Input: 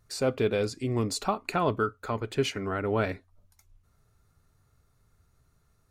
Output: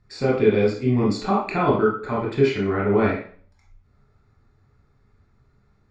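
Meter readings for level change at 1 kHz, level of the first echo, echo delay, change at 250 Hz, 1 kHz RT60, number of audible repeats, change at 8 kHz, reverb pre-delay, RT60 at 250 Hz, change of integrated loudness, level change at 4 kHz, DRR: +6.0 dB, no echo audible, no echo audible, +10.0 dB, 0.45 s, no echo audible, can't be measured, 19 ms, 0.50 s, +8.0 dB, 0.0 dB, −4.0 dB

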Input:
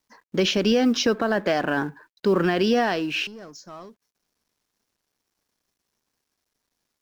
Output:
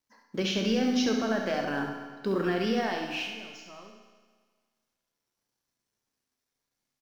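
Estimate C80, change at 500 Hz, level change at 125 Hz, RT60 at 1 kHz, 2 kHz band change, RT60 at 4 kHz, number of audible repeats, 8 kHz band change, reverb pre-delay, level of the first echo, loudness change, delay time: 6.0 dB, −7.5 dB, −6.0 dB, 1.6 s, −6.5 dB, 1.6 s, 1, can't be measured, 8 ms, −7.0 dB, −6.5 dB, 68 ms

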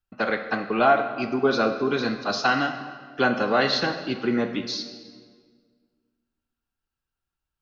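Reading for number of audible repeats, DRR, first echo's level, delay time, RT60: no echo audible, 7.5 dB, no echo audible, no echo audible, 1.7 s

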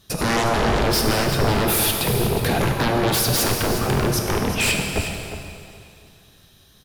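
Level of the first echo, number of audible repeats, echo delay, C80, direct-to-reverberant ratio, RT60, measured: −11.5 dB, 1, 360 ms, 3.5 dB, 1.5 dB, 2.5 s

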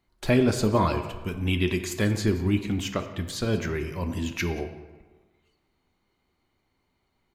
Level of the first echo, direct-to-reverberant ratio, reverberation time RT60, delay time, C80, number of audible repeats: −19.0 dB, 6.5 dB, 1.4 s, 180 ms, 10.5 dB, 1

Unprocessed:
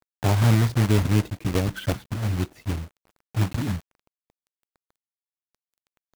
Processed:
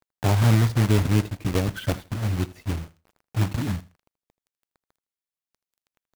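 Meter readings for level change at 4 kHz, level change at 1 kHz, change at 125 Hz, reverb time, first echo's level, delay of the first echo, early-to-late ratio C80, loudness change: 0.0 dB, 0.0 dB, +0.5 dB, no reverb audible, −19.0 dB, 80 ms, no reverb audible, 0.0 dB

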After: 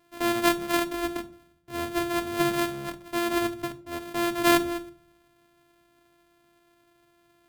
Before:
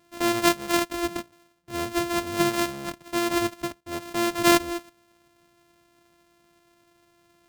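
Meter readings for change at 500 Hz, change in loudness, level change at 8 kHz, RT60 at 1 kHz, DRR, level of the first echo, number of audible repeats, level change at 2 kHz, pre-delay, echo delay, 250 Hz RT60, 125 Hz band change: −1.5 dB, −1.5 dB, −4.5 dB, 0.45 s, 7.0 dB, no echo audible, no echo audible, −1.0 dB, 3 ms, no echo audible, 0.80 s, −2.0 dB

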